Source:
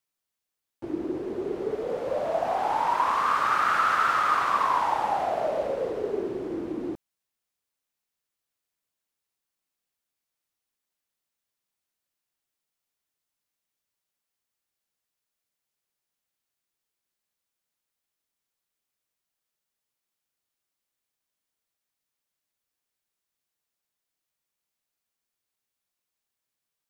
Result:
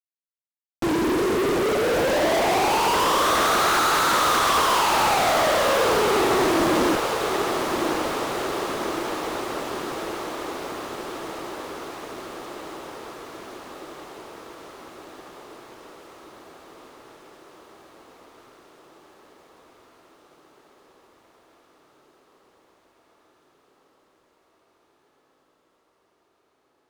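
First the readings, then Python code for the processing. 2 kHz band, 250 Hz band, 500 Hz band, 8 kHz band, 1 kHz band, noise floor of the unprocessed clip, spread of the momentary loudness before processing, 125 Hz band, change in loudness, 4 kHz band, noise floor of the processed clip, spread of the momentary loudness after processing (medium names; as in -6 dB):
+8.0 dB, +10.5 dB, +8.5 dB, +20.5 dB, +4.5 dB, under -85 dBFS, 11 LU, +12.5 dB, +4.0 dB, +17.0 dB, -68 dBFS, 20 LU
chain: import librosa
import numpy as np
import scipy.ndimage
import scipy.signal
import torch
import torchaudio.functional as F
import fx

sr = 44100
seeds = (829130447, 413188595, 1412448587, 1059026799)

y = fx.fuzz(x, sr, gain_db=52.0, gate_db=-49.0)
y = fx.echo_diffused(y, sr, ms=1166, feedback_pct=71, wet_db=-6.0)
y = y * librosa.db_to_amplitude(-7.5)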